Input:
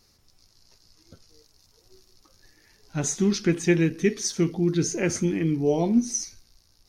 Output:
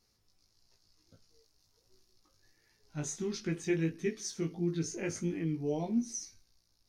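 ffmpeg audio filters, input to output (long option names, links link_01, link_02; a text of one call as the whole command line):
ffmpeg -i in.wav -af "flanger=delay=17.5:depth=2.6:speed=1.5,volume=-8.5dB" out.wav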